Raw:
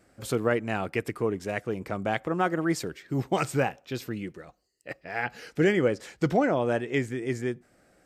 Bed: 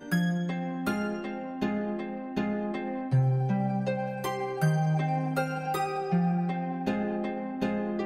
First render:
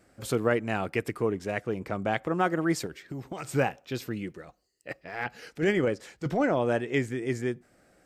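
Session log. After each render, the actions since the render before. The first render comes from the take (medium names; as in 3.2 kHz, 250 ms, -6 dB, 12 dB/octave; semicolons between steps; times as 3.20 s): 1.31–2.23 s: treble shelf 6.9 kHz -5 dB; 2.86–3.53 s: compression, threshold -33 dBFS; 5.05–6.57 s: transient shaper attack -10 dB, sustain -3 dB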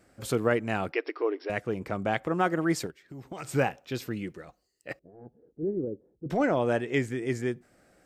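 0.92–1.50 s: brick-wall FIR band-pass 280–5700 Hz; 2.91–3.52 s: fade in, from -15 dB; 4.99–6.30 s: four-pole ladder low-pass 480 Hz, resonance 35%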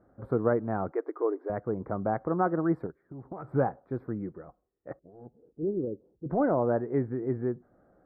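inverse Chebyshev low-pass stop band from 2.6 kHz, stop band 40 dB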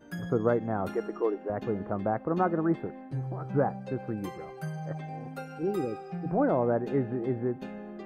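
add bed -11 dB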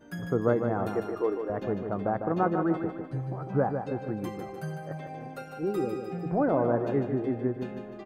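feedback delay 151 ms, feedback 46%, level -7 dB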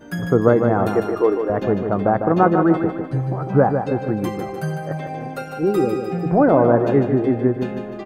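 trim +11 dB; peak limiter -2 dBFS, peak gain reduction 2 dB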